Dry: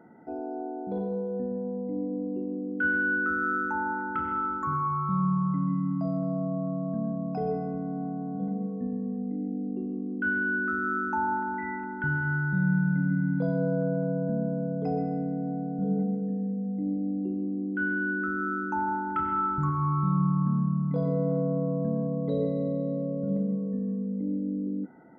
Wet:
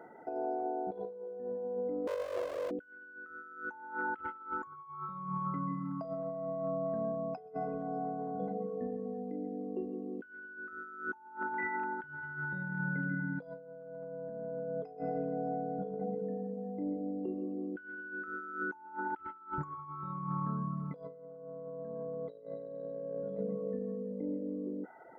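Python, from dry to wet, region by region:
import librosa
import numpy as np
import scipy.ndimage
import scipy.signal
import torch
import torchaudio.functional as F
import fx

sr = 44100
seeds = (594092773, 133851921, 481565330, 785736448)

y = fx.chain(x, sr, fx.lower_of_two(delay_ms=2.0),
    fx.highpass(hz=91.0, slope=6),
    fx.tilt_eq(slope=3.0), at=(2.07, 2.71))
y = fx.low_shelf_res(y, sr, hz=330.0, db=-10.5, q=1.5)
y = fx.dereverb_blind(y, sr, rt60_s=0.66)
y = fx.over_compress(y, sr, threshold_db=-38.0, ratio=-0.5)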